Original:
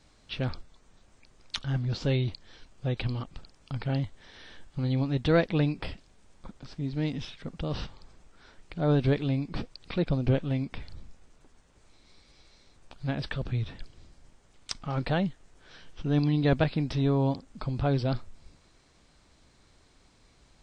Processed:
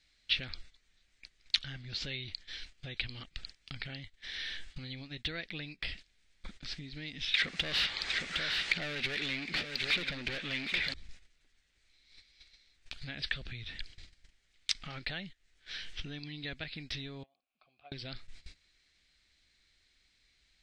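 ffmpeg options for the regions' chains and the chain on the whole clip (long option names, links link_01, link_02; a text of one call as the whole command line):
ffmpeg -i in.wav -filter_complex "[0:a]asettb=1/sr,asplit=3[link_01][link_02][link_03];[link_01]atrim=end=7.344[link_04];[link_02]atrim=start=7.34:end=10.94,asetpts=PTS-STARTPTS,afade=type=in:duration=0.004:curve=qsin,afade=type=out:start_time=3.596:duration=0.004:curve=qsin,asplit=2[link_05][link_06];[link_06]highpass=frequency=720:poles=1,volume=32dB,asoftclip=type=tanh:threshold=-13dB[link_07];[link_05][link_07]amix=inputs=2:normalize=0,lowpass=frequency=2900:poles=1,volume=-6dB,aecho=1:1:761:0.316,atrim=end_sample=158760[link_08];[link_03]atrim=start=10.936[link_09];[link_04][link_08]acrossfade=duration=0.004:curve1=hsin:curve2=qsin[link_10];[link_10][link_09]acrossfade=duration=0.004:curve1=qsin:curve2=hsin,asettb=1/sr,asplit=3[link_11][link_12][link_13];[link_11]atrim=end=17.234[link_14];[link_12]atrim=start=17.23:end=17.92,asetpts=PTS-STARTPTS,afade=type=in:duration=0.004:curve=qsin,afade=type=out:start_time=0.686:duration=0.004:curve=qsin,asplit=3[link_15][link_16][link_17];[link_15]bandpass=frequency=730:width_type=q:width=8,volume=0dB[link_18];[link_16]bandpass=frequency=1090:width_type=q:width=8,volume=-6dB[link_19];[link_17]bandpass=frequency=2440:width_type=q:width=8,volume=-9dB[link_20];[link_18][link_19][link_20]amix=inputs=3:normalize=0,acompressor=threshold=-40dB:ratio=6:attack=3.2:release=140:knee=1:detection=peak[link_21];[link_13]atrim=start=17.916[link_22];[link_14][link_21]acrossfade=duration=0.004:curve1=hsin:curve2=qsin[link_23];[link_23][link_22]acrossfade=duration=0.004:curve1=qsin:curve2=hsin,acompressor=threshold=-38dB:ratio=6,equalizer=frequency=125:width_type=o:width=1:gain=-8,equalizer=frequency=250:width_type=o:width=1:gain=-5,equalizer=frequency=500:width_type=o:width=1:gain=-6,equalizer=frequency=1000:width_type=o:width=1:gain=-11,equalizer=frequency=2000:width_type=o:width=1:gain=11,equalizer=frequency=4000:width_type=o:width=1:gain=9,agate=range=-15dB:threshold=-49dB:ratio=16:detection=peak,volume=2.5dB" out.wav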